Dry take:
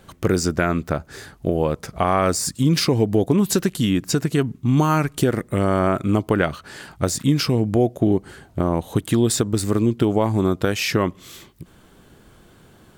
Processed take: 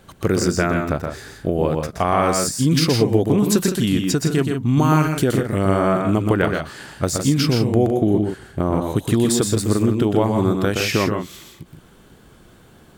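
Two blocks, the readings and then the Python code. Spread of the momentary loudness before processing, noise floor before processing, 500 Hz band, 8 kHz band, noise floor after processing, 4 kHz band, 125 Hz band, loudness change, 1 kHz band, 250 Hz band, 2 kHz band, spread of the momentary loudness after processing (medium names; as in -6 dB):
7 LU, -52 dBFS, +1.5 dB, +1.5 dB, -49 dBFS, +1.5 dB, +1.5 dB, +1.5 dB, +1.5 dB, +1.5 dB, +1.5 dB, 8 LU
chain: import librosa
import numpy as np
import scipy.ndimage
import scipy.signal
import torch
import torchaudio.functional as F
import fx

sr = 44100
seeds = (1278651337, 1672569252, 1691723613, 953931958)

y = fx.echo_multitap(x, sr, ms=(123, 161), db=(-5.0, -9.0))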